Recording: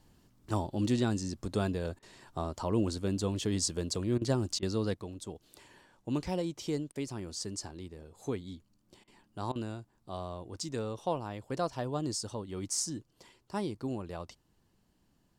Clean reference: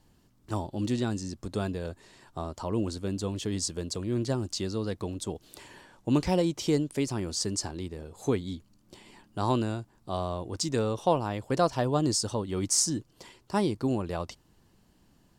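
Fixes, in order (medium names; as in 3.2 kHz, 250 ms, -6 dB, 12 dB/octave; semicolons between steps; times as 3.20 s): interpolate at 1.99/4.18/4.59/6.92/9.04/9.52 s, 34 ms; gain correction +8 dB, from 4.94 s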